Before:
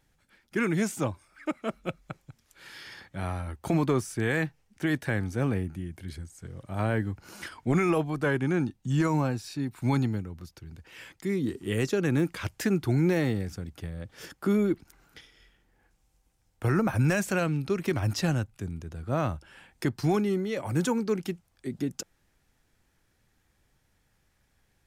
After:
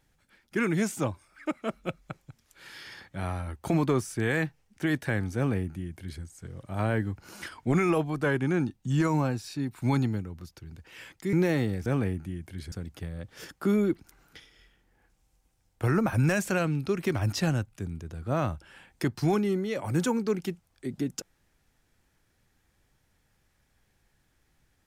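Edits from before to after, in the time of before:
0:05.36–0:06.22: duplicate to 0:13.53
0:11.33–0:13.00: remove

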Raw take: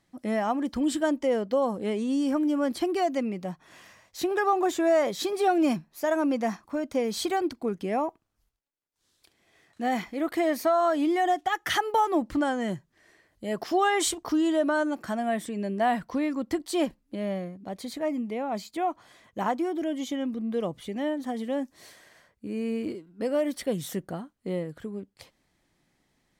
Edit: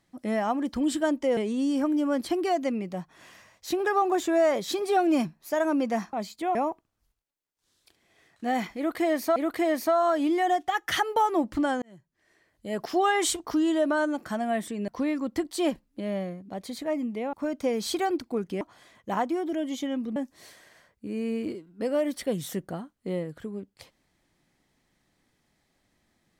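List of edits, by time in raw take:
0:01.37–0:01.88: remove
0:06.64–0:07.92: swap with 0:18.48–0:18.90
0:10.14–0:10.73: repeat, 2 plays
0:12.60–0:13.61: fade in
0:15.66–0:16.03: remove
0:20.45–0:21.56: remove

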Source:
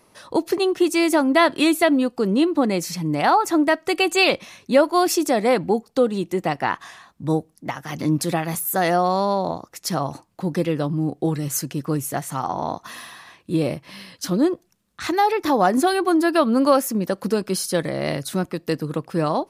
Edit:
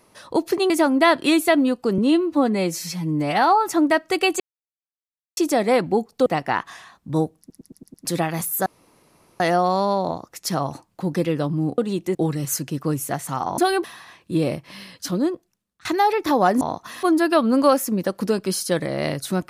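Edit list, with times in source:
0:00.70–0:01.04: remove
0:02.32–0:03.46: time-stretch 1.5×
0:04.17–0:05.14: silence
0:06.03–0:06.40: move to 0:11.18
0:07.53: stutter in place 0.11 s, 6 plays
0:08.80: splice in room tone 0.74 s
0:12.61–0:13.03: swap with 0:15.80–0:16.06
0:14.14–0:15.04: fade out, to −21.5 dB

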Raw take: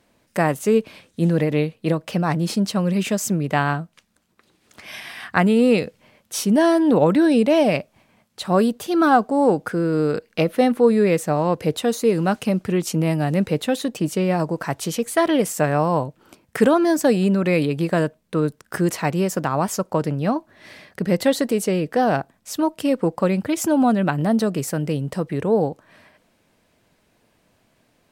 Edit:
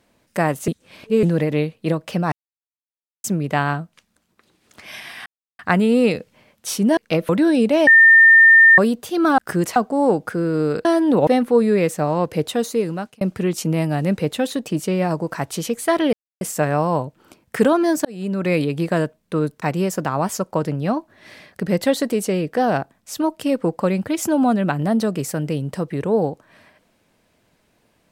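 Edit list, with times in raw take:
0:00.68–0:01.23: reverse
0:02.32–0:03.24: silence
0:05.26: splice in silence 0.33 s
0:06.64–0:07.06: swap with 0:10.24–0:10.56
0:07.64–0:08.55: beep over 1,810 Hz −6 dBFS
0:11.73–0:12.50: fade out equal-power
0:15.42: splice in silence 0.28 s
0:17.06–0:17.53: fade in
0:18.63–0:19.01: move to 0:09.15

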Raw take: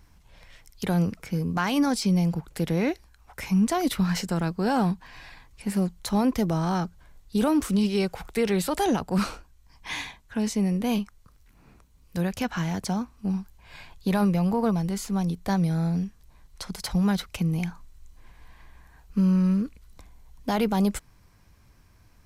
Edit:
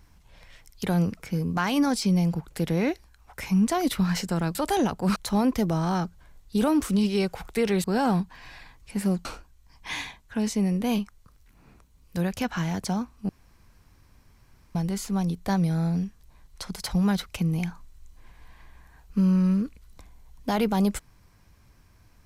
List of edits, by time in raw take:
0:04.55–0:05.96: swap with 0:08.64–0:09.25
0:13.29–0:14.75: fill with room tone

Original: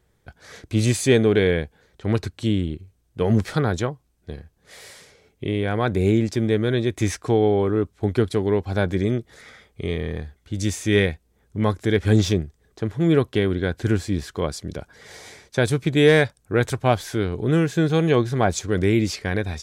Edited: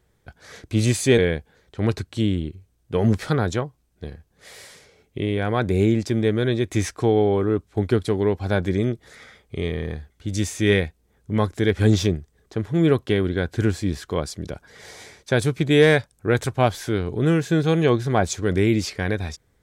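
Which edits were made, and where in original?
0:01.18–0:01.44: remove

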